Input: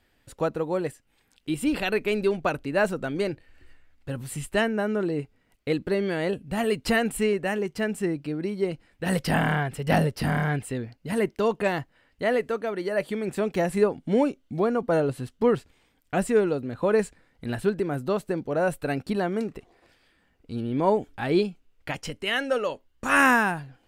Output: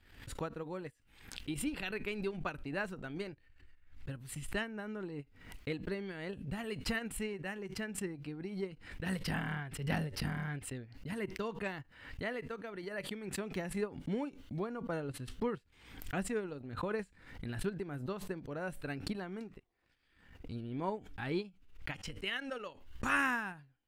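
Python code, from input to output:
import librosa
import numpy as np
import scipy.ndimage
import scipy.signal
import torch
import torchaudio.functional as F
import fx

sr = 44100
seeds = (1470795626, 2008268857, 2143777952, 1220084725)

y = fx.tone_stack(x, sr, knobs='6-0-2')
y = fx.comb_fb(y, sr, f0_hz=95.0, decay_s=0.18, harmonics='all', damping=0.0, mix_pct=30)
y = fx.transient(y, sr, attack_db=5, sustain_db=-10)
y = fx.curve_eq(y, sr, hz=(200.0, 790.0, 8200.0), db=(0, 10, -6))
y = fx.pre_swell(y, sr, db_per_s=75.0)
y = y * 10.0 ** (5.0 / 20.0)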